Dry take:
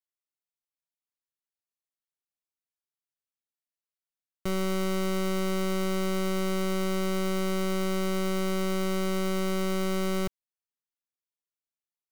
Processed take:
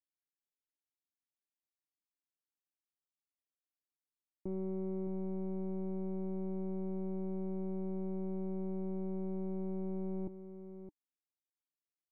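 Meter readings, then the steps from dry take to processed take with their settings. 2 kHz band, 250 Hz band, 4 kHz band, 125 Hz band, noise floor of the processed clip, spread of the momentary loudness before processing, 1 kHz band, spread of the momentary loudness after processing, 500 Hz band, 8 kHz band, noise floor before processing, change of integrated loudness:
below −35 dB, −8.5 dB, below −40 dB, can't be measured, below −85 dBFS, 1 LU, −18.5 dB, 7 LU, −10.5 dB, below −40 dB, below −85 dBFS, −10.5 dB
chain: formant resonators in series u
on a send: single-tap delay 615 ms −11 dB
on the sum: level +2 dB

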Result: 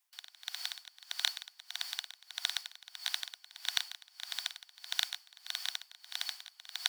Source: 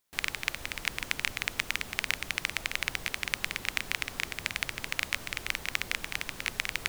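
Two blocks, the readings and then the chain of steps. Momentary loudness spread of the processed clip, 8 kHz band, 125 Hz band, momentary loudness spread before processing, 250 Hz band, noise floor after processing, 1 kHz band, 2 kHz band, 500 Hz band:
11 LU, −5.0 dB, below −40 dB, 2 LU, below −40 dB, −67 dBFS, −10.0 dB, −12.5 dB, below −15 dB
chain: band-splitting scrambler in four parts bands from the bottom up 4321
Butterworth high-pass 690 Hz 96 dB per octave
tremolo with a sine in dB 1.6 Hz, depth 23 dB

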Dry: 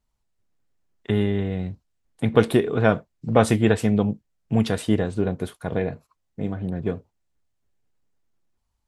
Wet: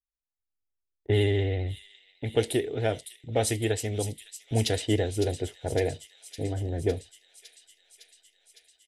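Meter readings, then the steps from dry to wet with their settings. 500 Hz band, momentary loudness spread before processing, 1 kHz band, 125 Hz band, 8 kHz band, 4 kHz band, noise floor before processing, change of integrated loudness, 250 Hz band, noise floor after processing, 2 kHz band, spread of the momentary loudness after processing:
−4.5 dB, 12 LU, −9.0 dB, −3.5 dB, +4.5 dB, +2.0 dB, −76 dBFS, −5.5 dB, −10.0 dB, below −85 dBFS, −6.0 dB, 11 LU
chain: low-pass that shuts in the quiet parts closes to 510 Hz, open at −15.5 dBFS
noise gate with hold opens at −43 dBFS
high-shelf EQ 3,800 Hz +9.5 dB
comb filter 1 ms, depth 30%
automatic gain control gain up to 11 dB
phaser with its sweep stopped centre 460 Hz, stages 4
pitch vibrato 15 Hz 41 cents
on a send: delay with a high-pass on its return 558 ms, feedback 73%, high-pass 4,200 Hz, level −6.5 dB
on the sum: level −5 dB

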